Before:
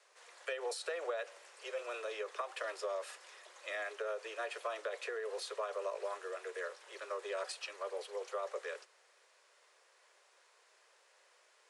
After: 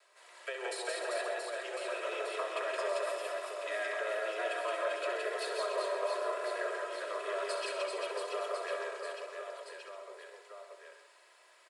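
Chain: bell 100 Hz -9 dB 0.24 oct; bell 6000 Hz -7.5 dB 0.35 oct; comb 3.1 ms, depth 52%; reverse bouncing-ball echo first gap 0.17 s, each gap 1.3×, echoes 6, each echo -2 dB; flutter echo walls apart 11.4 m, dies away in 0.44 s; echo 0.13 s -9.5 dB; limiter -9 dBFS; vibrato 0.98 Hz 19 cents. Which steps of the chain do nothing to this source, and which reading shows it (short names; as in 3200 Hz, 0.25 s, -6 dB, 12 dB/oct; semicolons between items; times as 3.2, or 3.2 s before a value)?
bell 100 Hz: input band starts at 320 Hz; limiter -9 dBFS: input peak -22.0 dBFS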